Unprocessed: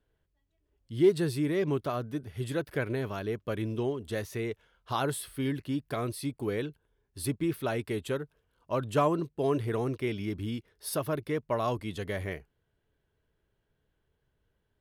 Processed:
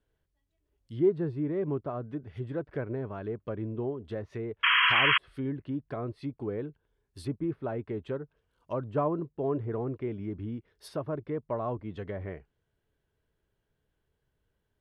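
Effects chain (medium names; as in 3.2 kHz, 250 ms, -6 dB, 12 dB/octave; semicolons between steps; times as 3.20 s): low-pass that closes with the level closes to 1.1 kHz, closed at -30 dBFS; painted sound noise, 4.63–5.18 s, 960–3300 Hz -21 dBFS; trim -2 dB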